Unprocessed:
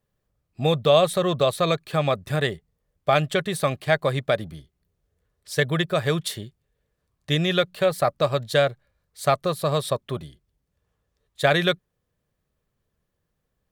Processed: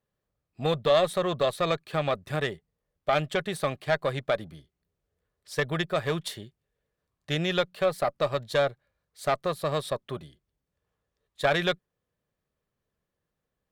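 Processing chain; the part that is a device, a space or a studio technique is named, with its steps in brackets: tube preamp driven hard (valve stage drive 10 dB, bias 0.65; bass shelf 150 Hz -7.5 dB; treble shelf 5.3 kHz -6 dB)

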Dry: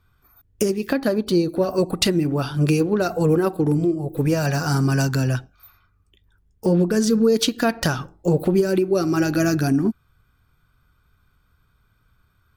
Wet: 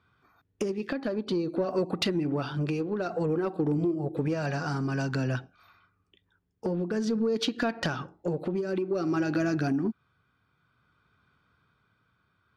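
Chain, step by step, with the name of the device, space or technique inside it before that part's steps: AM radio (band-pass 150–3900 Hz; compression 5:1, threshold -23 dBFS, peak gain reduction 9.5 dB; saturation -16 dBFS, distortion -24 dB; tremolo 0.53 Hz, depth 32%)

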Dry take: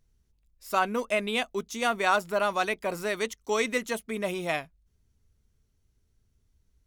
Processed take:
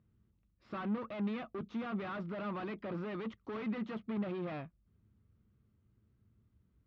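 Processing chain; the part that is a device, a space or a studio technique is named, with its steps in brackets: guitar amplifier (valve stage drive 40 dB, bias 0.35; tone controls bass +8 dB, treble -14 dB; cabinet simulation 94–4200 Hz, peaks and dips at 110 Hz +5 dB, 210 Hz +8 dB, 330 Hz +7 dB, 550 Hz +3 dB, 1.2 kHz +8 dB); trim -3 dB

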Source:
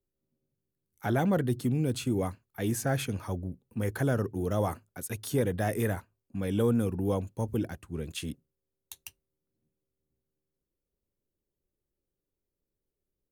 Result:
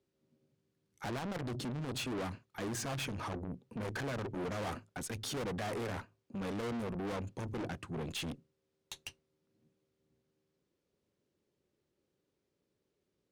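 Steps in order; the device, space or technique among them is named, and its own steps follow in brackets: valve radio (band-pass 120–5600 Hz; valve stage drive 44 dB, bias 0.2; transformer saturation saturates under 150 Hz); trim +9 dB

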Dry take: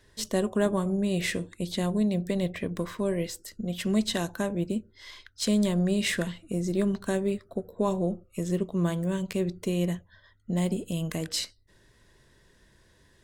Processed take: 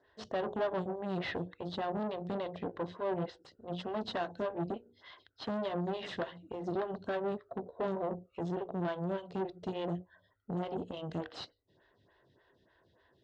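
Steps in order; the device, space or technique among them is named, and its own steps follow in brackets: hum notches 60/120/180/240/300/360/420/480/540 Hz; vibe pedal into a guitar amplifier (lamp-driven phase shifter 3.4 Hz; valve stage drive 33 dB, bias 0.8; cabinet simulation 91–3800 Hz, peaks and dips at 210 Hz -6 dB, 720 Hz +6 dB, 2.3 kHz -10 dB); 9.92–10.63 s: peaking EQ 3.9 kHz -5 dB 1 oct; trim +3.5 dB

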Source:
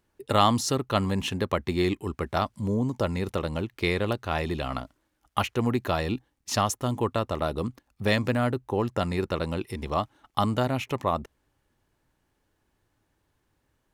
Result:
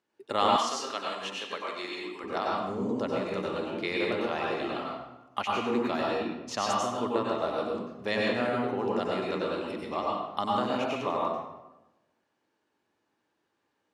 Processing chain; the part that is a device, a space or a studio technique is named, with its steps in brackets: supermarket ceiling speaker (band-pass 260–6400 Hz; reverberation RT60 1.0 s, pre-delay 87 ms, DRR -3.5 dB); 0.56–2.24 s: high-pass 1.2 kHz 6 dB/octave; trim -6 dB

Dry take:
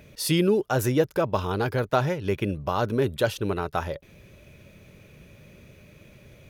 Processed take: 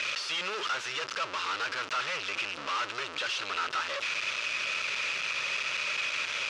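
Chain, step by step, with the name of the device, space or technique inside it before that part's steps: amplifier tone stack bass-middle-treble 10-0-10; home computer beeper (one-bit comparator; cabinet simulation 510–5700 Hz, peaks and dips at 750 Hz -8 dB, 1.3 kHz +8 dB, 2.7 kHz +6 dB); trim +8 dB

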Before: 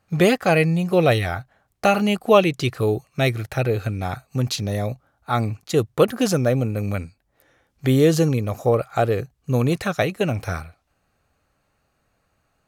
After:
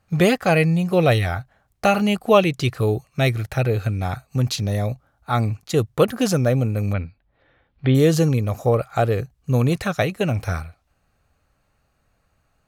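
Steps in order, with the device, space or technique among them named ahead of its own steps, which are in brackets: 6.93–7.95 s: steep low-pass 4 kHz 36 dB/octave; low shelf boost with a cut just above (bass shelf 88 Hz +8 dB; peaking EQ 350 Hz -2 dB)

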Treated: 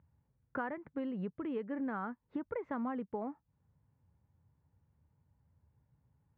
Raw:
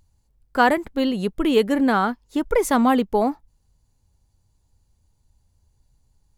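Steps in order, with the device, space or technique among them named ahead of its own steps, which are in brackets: bass amplifier (compression 4:1, threshold -34 dBFS, peak gain reduction 18.5 dB; cabinet simulation 77–2000 Hz, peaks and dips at 150 Hz +7 dB, 370 Hz -3 dB, 720 Hz -4 dB); trim -3.5 dB

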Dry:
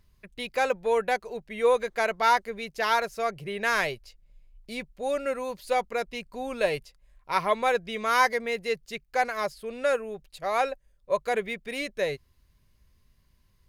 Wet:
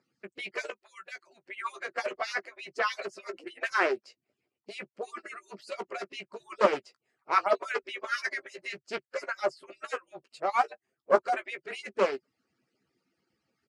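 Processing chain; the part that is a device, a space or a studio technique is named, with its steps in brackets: harmonic-percussive separation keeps percussive; 0.70–1.44 s: amplifier tone stack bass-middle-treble 5-5-5; full-range speaker at full volume (loudspeaker Doppler distortion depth 0.44 ms; cabinet simulation 240–7600 Hz, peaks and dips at 240 Hz +6 dB, 370 Hz +10 dB, 610 Hz +4 dB, 1.3 kHz +5 dB, 3.6 kHz -9 dB, 6.2 kHz -4 dB); doubling 15 ms -9.5 dB

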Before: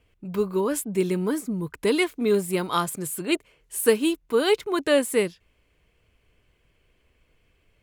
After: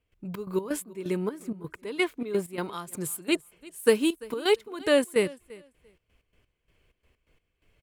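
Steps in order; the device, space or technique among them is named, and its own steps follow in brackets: 0.76–2.73 s: tone controls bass -4 dB, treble -6 dB; trance gate with a delay (trance gate ".xx.x.x." 128 bpm -12 dB; feedback delay 342 ms, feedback 18%, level -21.5 dB); trim -1.5 dB

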